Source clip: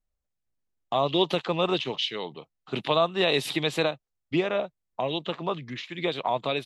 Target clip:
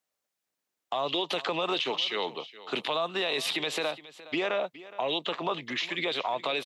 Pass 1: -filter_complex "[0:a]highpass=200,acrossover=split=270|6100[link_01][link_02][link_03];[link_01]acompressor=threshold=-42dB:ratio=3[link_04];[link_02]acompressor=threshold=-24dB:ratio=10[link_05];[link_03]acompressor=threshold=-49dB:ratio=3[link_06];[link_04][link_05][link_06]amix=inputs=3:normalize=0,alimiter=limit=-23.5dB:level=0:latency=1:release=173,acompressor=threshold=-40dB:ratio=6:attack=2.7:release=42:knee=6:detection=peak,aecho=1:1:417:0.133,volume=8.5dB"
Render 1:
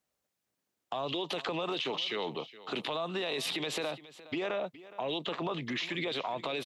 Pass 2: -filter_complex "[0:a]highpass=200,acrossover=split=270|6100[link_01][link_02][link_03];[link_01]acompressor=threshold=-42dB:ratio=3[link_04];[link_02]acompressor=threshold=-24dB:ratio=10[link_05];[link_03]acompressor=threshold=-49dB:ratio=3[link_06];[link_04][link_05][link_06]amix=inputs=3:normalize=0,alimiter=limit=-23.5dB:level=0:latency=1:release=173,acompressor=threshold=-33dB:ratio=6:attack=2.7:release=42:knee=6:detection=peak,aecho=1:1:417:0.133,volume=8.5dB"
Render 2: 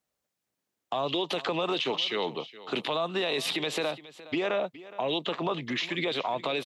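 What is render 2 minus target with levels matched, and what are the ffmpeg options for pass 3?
250 Hz band +3.0 dB
-filter_complex "[0:a]highpass=200,lowshelf=frequency=320:gain=-11.5,acrossover=split=270|6100[link_01][link_02][link_03];[link_01]acompressor=threshold=-42dB:ratio=3[link_04];[link_02]acompressor=threshold=-24dB:ratio=10[link_05];[link_03]acompressor=threshold=-49dB:ratio=3[link_06];[link_04][link_05][link_06]amix=inputs=3:normalize=0,alimiter=limit=-23.5dB:level=0:latency=1:release=173,acompressor=threshold=-33dB:ratio=6:attack=2.7:release=42:knee=6:detection=peak,aecho=1:1:417:0.133,volume=8.5dB"

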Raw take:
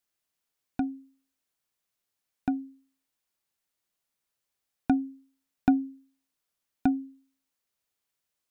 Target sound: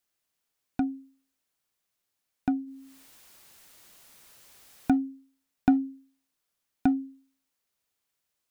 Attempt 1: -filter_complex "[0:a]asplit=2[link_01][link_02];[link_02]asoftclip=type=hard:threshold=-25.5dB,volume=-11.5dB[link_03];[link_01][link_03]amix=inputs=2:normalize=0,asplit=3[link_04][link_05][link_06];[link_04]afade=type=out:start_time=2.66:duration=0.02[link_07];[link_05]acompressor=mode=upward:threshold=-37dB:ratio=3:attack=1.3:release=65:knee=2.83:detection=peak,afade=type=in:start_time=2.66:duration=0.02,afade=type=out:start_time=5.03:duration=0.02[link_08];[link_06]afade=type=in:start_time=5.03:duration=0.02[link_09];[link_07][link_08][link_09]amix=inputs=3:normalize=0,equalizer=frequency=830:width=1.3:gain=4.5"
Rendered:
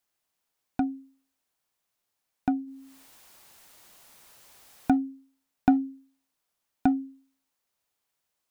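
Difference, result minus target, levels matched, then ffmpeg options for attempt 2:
1,000 Hz band +3.5 dB
-filter_complex "[0:a]asplit=2[link_01][link_02];[link_02]asoftclip=type=hard:threshold=-25.5dB,volume=-11.5dB[link_03];[link_01][link_03]amix=inputs=2:normalize=0,asplit=3[link_04][link_05][link_06];[link_04]afade=type=out:start_time=2.66:duration=0.02[link_07];[link_05]acompressor=mode=upward:threshold=-37dB:ratio=3:attack=1.3:release=65:knee=2.83:detection=peak,afade=type=in:start_time=2.66:duration=0.02,afade=type=out:start_time=5.03:duration=0.02[link_08];[link_06]afade=type=in:start_time=5.03:duration=0.02[link_09];[link_07][link_08][link_09]amix=inputs=3:normalize=0"

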